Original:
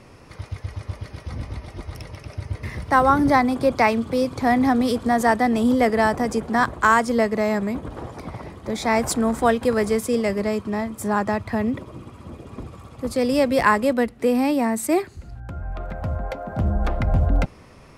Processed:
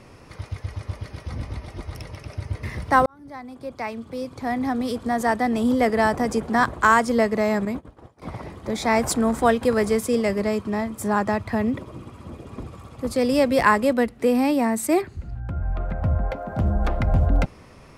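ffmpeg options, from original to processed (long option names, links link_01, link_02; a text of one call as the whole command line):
ffmpeg -i in.wav -filter_complex "[0:a]asettb=1/sr,asplit=3[link_01][link_02][link_03];[link_01]atrim=end=7.654[link_04];[link_02]atrim=start=7.65:end=8.22,asetpts=PTS-STARTPTS,afade=type=in:duration=0.004:curve=qsin,afade=type=out:start_time=0.566:duration=0.004:curve=qsin,agate=range=-33dB:threshold=-24dB:ratio=3:release=100:detection=peak[link_05];[link_03]atrim=start=8.216[link_06];[link_04][link_05]acrossfade=duration=0.004:curve1=hsin:curve2=qsin[link_07];[link_07][link_06]acrossfade=duration=0.004:curve1=qsin:curve2=hsin,asettb=1/sr,asplit=3[link_08][link_09][link_10];[link_08]atrim=end=15.014[link_11];[link_09]atrim=start=15.01:end=16.36,asetpts=PTS-STARTPTS,afade=type=in:duration=0.004:curve=qsin,afade=type=out:start_time=1.346:duration=0.004:curve=qsin,bass=frequency=250:gain=5,treble=frequency=4000:gain=-8[link_12];[link_10]atrim=start=16.356[link_13];[link_11][link_12]acrossfade=duration=0.004:curve1=hsin:curve2=qsin[link_14];[link_14][link_13]acrossfade=duration=0.004:curve1=qsin:curve2=hsin,asplit=2[link_15][link_16];[link_15]atrim=end=3.06,asetpts=PTS-STARTPTS,afade=type=out:start_time=3.056:duration=0.004:curve=hsin[link_17];[link_16]atrim=start=3.06,asetpts=PTS-STARTPTS,afade=type=in:duration=3.28[link_18];[link_17][link_18]concat=n=2:v=0:a=1" out.wav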